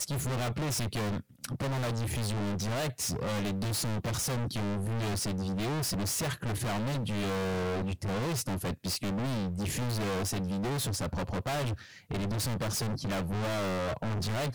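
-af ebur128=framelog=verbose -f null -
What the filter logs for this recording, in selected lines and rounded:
Integrated loudness:
  I:         -32.5 LUFS
  Threshold: -42.5 LUFS
Loudness range:
  LRA:         1.0 LU
  Threshold: -52.4 LUFS
  LRA low:   -32.9 LUFS
  LRA high:  -31.9 LUFS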